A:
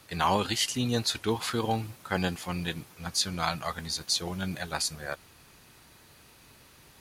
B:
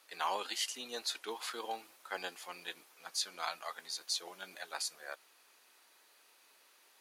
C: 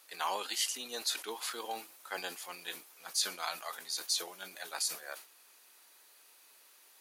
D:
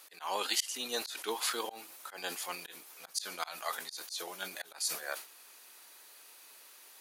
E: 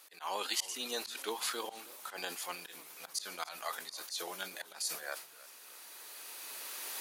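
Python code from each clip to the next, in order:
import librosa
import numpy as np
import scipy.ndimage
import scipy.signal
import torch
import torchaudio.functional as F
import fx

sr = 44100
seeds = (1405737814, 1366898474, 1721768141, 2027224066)

y1 = scipy.signal.sosfilt(scipy.signal.bessel(4, 550.0, 'highpass', norm='mag', fs=sr, output='sos'), x)
y1 = F.gain(torch.from_numpy(y1), -8.0).numpy()
y2 = fx.high_shelf(y1, sr, hz=7000.0, db=10.0)
y2 = fx.sustainer(y2, sr, db_per_s=140.0)
y3 = fx.auto_swell(y2, sr, attack_ms=238.0)
y3 = F.gain(torch.from_numpy(y3), 5.5).numpy()
y4 = fx.recorder_agc(y3, sr, target_db=-24.0, rise_db_per_s=9.4, max_gain_db=30)
y4 = fx.hum_notches(y4, sr, base_hz=60, count=2)
y4 = fx.echo_warbled(y4, sr, ms=309, feedback_pct=55, rate_hz=2.8, cents=197, wet_db=-19.5)
y4 = F.gain(torch.from_numpy(y4), -3.0).numpy()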